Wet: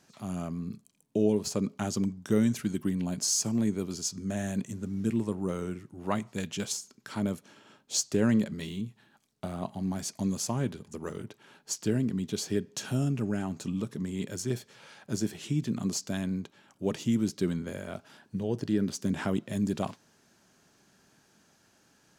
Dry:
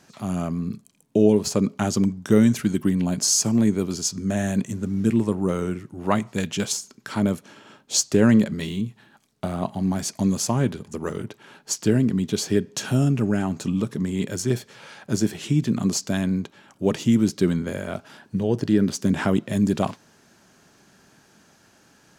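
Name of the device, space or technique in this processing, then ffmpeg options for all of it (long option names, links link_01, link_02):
exciter from parts: -filter_complex "[0:a]asplit=2[link_01][link_02];[link_02]highpass=2300,asoftclip=type=tanh:threshold=-22dB,volume=-12dB[link_03];[link_01][link_03]amix=inputs=2:normalize=0,volume=-8.5dB"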